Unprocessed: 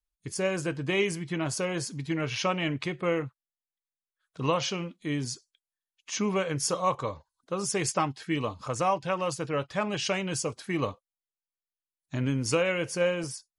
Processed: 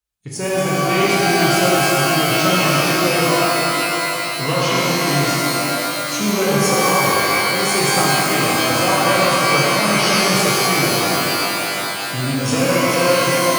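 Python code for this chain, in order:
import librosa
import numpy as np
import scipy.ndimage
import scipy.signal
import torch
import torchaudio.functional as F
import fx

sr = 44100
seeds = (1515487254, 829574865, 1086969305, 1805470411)

y = fx.diode_clip(x, sr, knee_db=-21.5)
y = scipy.signal.sosfilt(scipy.signal.butter(2, 66.0, 'highpass', fs=sr, output='sos'), y)
y = fx.rev_shimmer(y, sr, seeds[0], rt60_s=3.9, semitones=12, shimmer_db=-2, drr_db=-6.5)
y = F.gain(torch.from_numpy(y), 4.5).numpy()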